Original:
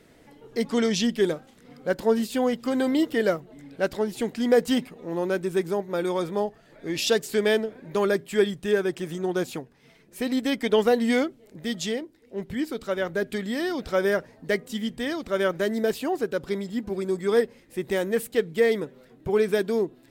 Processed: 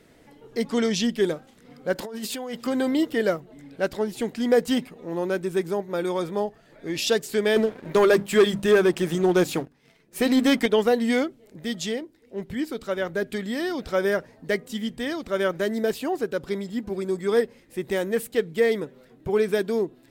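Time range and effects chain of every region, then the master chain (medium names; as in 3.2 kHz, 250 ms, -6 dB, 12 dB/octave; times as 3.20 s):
1.95–2.67 s: compressor with a negative ratio -29 dBFS + bass shelf 280 Hz -9 dB
7.56–10.66 s: hum notches 50/100/150/200/250/300 Hz + waveshaping leveller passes 2
whole clip: none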